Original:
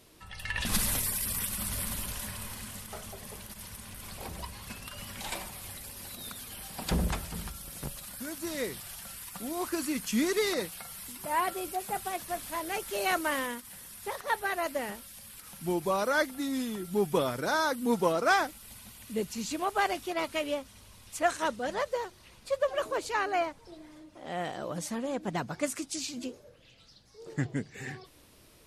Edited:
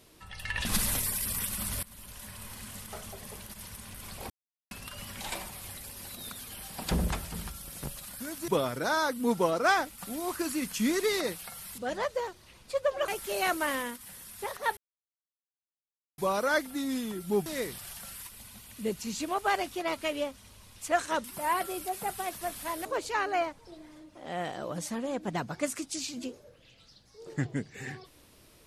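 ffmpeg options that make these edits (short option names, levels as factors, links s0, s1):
-filter_complex "[0:a]asplit=14[s0][s1][s2][s3][s4][s5][s6][s7][s8][s9][s10][s11][s12][s13];[s0]atrim=end=1.83,asetpts=PTS-STARTPTS,afade=t=out:st=1.826:d=0.004:c=hsin:silence=0.0891251[s14];[s1]atrim=start=1.83:end=4.3,asetpts=PTS-STARTPTS,afade=t=in:d=1.02:silence=0.0891251,afade=t=out:st=2.466:d=0.004:c=hsin[s15];[s2]atrim=start=4.3:end=4.71,asetpts=PTS-STARTPTS,volume=0[s16];[s3]atrim=start=4.71:end=8.482,asetpts=PTS-STARTPTS,afade=t=in:d=0.004:c=hsin[s17];[s4]atrim=start=17.098:end=18.602[s18];[s5]atrim=start=9.308:end=11.112[s19];[s6]atrim=start=21.548:end=22.852[s20];[s7]atrim=start=12.718:end=14.41,asetpts=PTS-STARTPTS,afade=t=out:st=1.688:d=0.004:c=hsin[s21];[s8]atrim=start=14.41:end=15.82,asetpts=PTS-STARTPTS,volume=0[s22];[s9]atrim=start=15.82:end=17.102,asetpts=PTS-STARTPTS,afade=t=in:d=0.004:c=hsin[s23];[s10]atrim=start=8.478:end=9.312[s24];[s11]atrim=start=18.598:end=21.552[s25];[s12]atrim=start=11.108:end=12.722[s26];[s13]atrim=start=22.848[s27];[s14][s15][s16][s17]concat=n=4:v=0:a=1[s28];[s28][s18]acrossfade=d=0.004:c1=hsin:c2=hsin[s29];[s29][s19]acrossfade=d=0.004:c1=hsin:c2=hsin[s30];[s30][s20]acrossfade=d=0.004:c1=hsin:c2=hsin[s31];[s21][s22][s23]concat=n=3:v=0:a=1[s32];[s31][s32]acrossfade=d=0.004:c1=hsin:c2=hsin[s33];[s33][s24]acrossfade=d=0.004:c1=hsin:c2=hsin[s34];[s34][s25]acrossfade=d=0.004:c1=hsin:c2=hsin[s35];[s35][s26]acrossfade=d=0.004:c1=hsin:c2=hsin[s36];[s36][s27]acrossfade=d=0.004:c1=hsin:c2=hsin"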